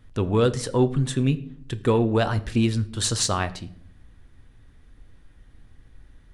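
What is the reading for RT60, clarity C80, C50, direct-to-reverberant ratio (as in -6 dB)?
0.65 s, 20.5 dB, 17.5 dB, 11.0 dB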